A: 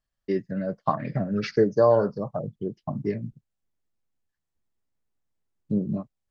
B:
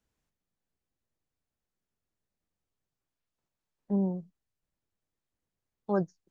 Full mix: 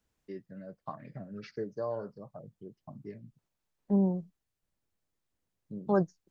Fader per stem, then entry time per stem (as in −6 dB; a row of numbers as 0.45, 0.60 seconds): −16.5, +2.0 decibels; 0.00, 0.00 seconds